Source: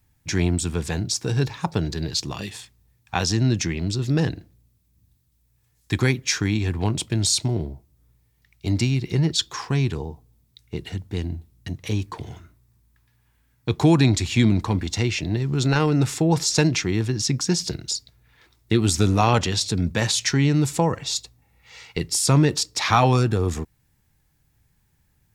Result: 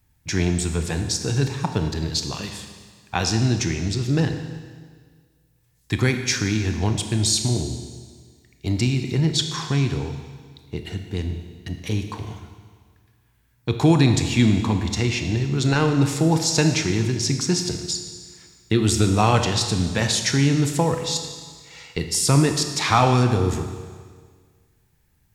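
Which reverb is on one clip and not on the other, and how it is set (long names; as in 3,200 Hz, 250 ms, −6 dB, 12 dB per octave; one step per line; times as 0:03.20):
four-comb reverb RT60 1.7 s, combs from 25 ms, DRR 6 dB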